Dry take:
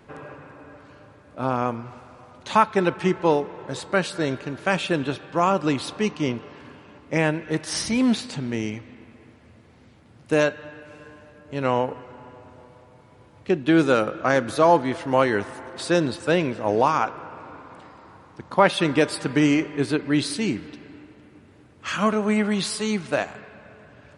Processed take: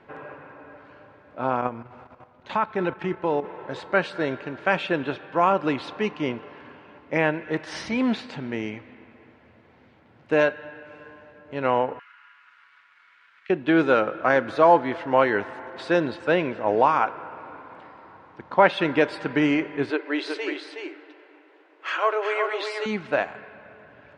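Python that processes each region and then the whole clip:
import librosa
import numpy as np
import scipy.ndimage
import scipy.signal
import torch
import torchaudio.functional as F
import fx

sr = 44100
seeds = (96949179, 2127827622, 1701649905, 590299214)

y = fx.chain(x, sr, fx.low_shelf(hz=270.0, db=6.0),
    fx.level_steps(step_db=11), at=(1.61, 3.45))
y = fx.chain(y, sr, fx.steep_highpass(hz=1300.0, slope=48),
    fx.leveller(passes=1),
    fx.band_squash(depth_pct=70), at=(11.99, 13.5))
y = fx.chain(y, sr, fx.brickwall_bandpass(low_hz=290.0, high_hz=9800.0),
    fx.echo_single(ms=368, db=-5.5), at=(19.9, 22.86))
y = scipy.signal.sosfilt(scipy.signal.butter(2, 2500.0, 'lowpass', fs=sr, output='sos'), y)
y = fx.low_shelf(y, sr, hz=260.0, db=-11.5)
y = fx.notch(y, sr, hz=1200.0, q=16.0)
y = y * 10.0 ** (2.5 / 20.0)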